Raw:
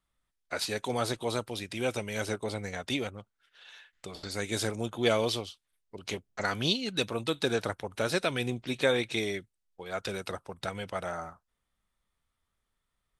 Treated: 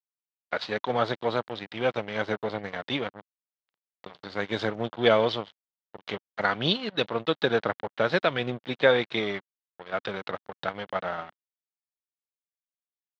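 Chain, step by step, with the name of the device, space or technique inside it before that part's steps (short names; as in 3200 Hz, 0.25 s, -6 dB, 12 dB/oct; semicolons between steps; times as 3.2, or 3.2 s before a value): blown loudspeaker (crossover distortion -41 dBFS; speaker cabinet 150–3500 Hz, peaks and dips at 260 Hz -5 dB, 370 Hz -4 dB, 2500 Hz -7 dB); gain +8 dB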